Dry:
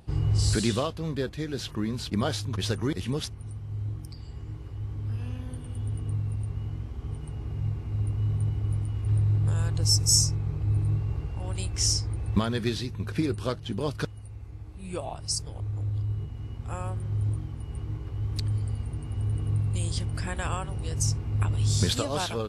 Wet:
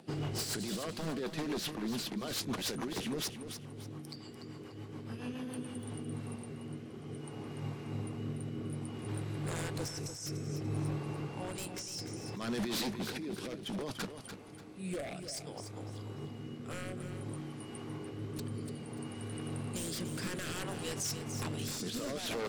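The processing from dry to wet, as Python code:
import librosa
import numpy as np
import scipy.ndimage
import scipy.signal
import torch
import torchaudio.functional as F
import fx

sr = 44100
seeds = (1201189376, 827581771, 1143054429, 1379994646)

y = scipy.signal.sosfilt(scipy.signal.butter(4, 180.0, 'highpass', fs=sr, output='sos'), x)
y = fx.over_compress(y, sr, threshold_db=-34.0, ratio=-1.0)
y = 10.0 ** (-31.0 / 20.0) * (np.abs((y / 10.0 ** (-31.0 / 20.0) + 3.0) % 4.0 - 2.0) - 1.0)
y = fx.rotary_switch(y, sr, hz=7.0, then_hz=0.6, switch_at_s=5.46)
y = fx.echo_feedback(y, sr, ms=293, feedback_pct=31, wet_db=-9.0)
y = y * librosa.db_to_amplitude(1.5)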